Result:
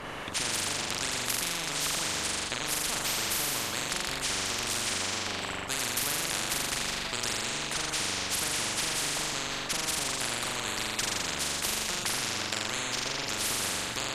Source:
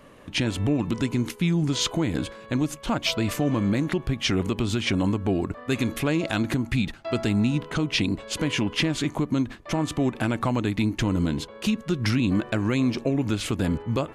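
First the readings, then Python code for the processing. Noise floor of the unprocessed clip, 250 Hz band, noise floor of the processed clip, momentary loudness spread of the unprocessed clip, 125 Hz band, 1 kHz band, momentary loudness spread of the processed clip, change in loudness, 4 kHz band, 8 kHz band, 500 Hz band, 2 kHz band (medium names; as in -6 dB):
-45 dBFS, -18.5 dB, -36 dBFS, 4 LU, -18.0 dB, -1.0 dB, 3 LU, -4.0 dB, +1.5 dB, +9.0 dB, -9.5 dB, 0.0 dB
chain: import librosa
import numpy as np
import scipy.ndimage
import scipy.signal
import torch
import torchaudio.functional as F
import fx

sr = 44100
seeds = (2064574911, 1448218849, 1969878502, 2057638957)

y = fx.high_shelf(x, sr, hz=7800.0, db=-10.0)
y = fx.hpss(y, sr, part='harmonic', gain_db=-8)
y = fx.room_flutter(y, sr, wall_m=7.2, rt60_s=1.1)
y = fx.spectral_comp(y, sr, ratio=10.0)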